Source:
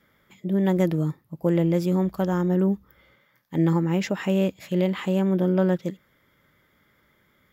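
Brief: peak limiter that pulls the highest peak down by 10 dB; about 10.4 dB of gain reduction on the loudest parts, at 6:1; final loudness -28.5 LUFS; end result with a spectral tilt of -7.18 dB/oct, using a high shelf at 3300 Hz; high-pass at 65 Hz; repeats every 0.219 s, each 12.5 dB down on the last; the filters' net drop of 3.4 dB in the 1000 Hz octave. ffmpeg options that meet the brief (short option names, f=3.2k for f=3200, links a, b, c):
-af "highpass=65,equalizer=f=1k:t=o:g=-4,highshelf=f=3.3k:g=-5.5,acompressor=threshold=-29dB:ratio=6,alimiter=level_in=4dB:limit=-24dB:level=0:latency=1,volume=-4dB,aecho=1:1:219|438|657:0.237|0.0569|0.0137,volume=8.5dB"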